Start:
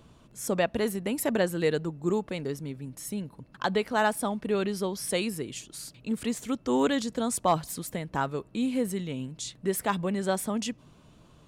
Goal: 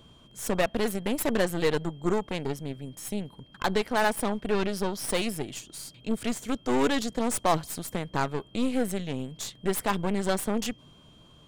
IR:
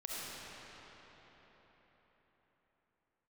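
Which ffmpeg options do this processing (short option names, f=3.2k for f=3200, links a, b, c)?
-af "aeval=exprs='0.211*(cos(1*acos(clip(val(0)/0.211,-1,1)))-cos(1*PI/2))+0.0266*(cos(8*acos(clip(val(0)/0.211,-1,1)))-cos(8*PI/2))':c=same,aeval=exprs='val(0)+0.00126*sin(2*PI*3200*n/s)':c=same"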